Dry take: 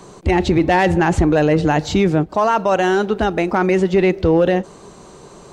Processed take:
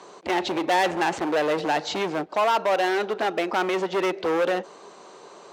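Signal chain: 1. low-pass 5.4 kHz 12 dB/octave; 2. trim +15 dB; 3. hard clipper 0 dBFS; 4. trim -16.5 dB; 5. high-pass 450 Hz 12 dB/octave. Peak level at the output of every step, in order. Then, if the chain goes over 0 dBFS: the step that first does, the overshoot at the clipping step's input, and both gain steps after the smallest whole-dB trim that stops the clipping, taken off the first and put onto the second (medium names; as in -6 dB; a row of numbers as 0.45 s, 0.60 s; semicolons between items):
-6.5 dBFS, +8.5 dBFS, 0.0 dBFS, -16.5 dBFS, -10.5 dBFS; step 2, 8.5 dB; step 2 +6 dB, step 4 -7.5 dB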